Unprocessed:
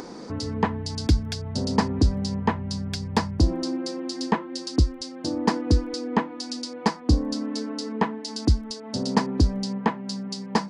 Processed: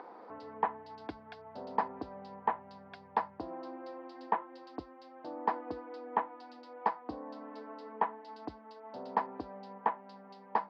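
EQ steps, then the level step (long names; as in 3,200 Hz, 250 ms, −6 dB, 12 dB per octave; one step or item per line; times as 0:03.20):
resonant band-pass 800 Hz, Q 1.7
high-frequency loss of the air 430 metres
spectral tilt +3.5 dB per octave
0.0 dB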